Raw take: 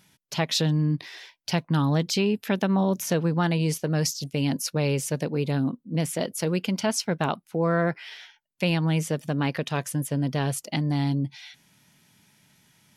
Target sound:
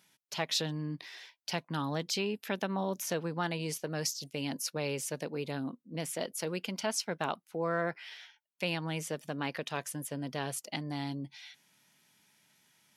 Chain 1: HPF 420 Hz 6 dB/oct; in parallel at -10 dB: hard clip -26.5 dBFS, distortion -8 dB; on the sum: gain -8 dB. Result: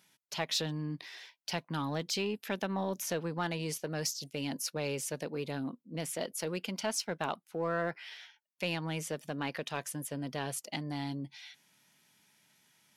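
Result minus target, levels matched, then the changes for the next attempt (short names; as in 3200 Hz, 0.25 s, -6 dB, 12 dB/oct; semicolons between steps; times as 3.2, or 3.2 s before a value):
hard clip: distortion +25 dB
change: hard clip -14.5 dBFS, distortion -33 dB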